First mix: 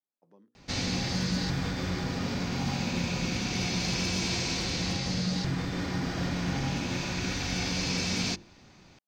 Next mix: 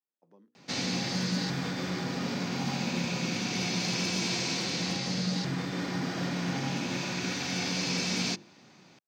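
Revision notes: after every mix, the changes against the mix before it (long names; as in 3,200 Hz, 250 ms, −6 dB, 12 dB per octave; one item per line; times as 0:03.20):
master: add high-pass filter 140 Hz 24 dB per octave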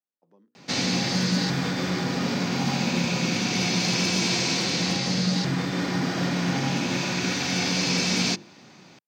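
background +6.5 dB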